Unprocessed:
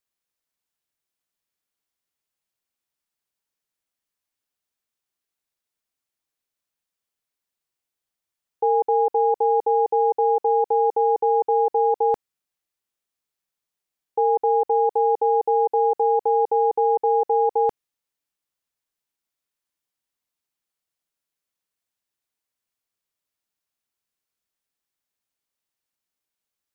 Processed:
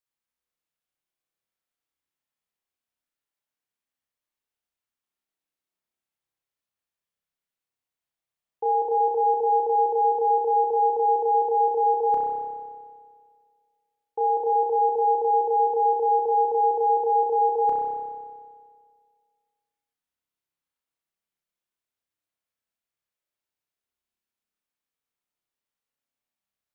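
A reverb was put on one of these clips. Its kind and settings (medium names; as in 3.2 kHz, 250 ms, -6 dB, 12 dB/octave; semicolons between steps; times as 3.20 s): spring tank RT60 1.9 s, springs 30 ms, chirp 30 ms, DRR -2.5 dB; trim -7 dB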